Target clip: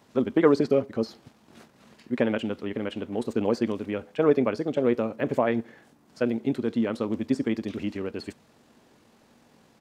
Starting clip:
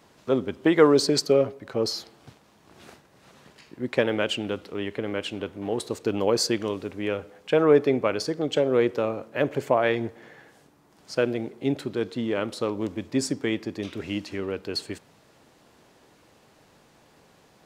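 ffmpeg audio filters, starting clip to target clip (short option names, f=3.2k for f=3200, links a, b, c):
-filter_complex "[0:a]acrossover=split=2600[a][b];[b]acompressor=threshold=-42dB:ratio=4:attack=1:release=60[c];[a][c]amix=inputs=2:normalize=0,atempo=1.8,equalizer=f=230:t=o:w=0.37:g=9,volume=-2dB"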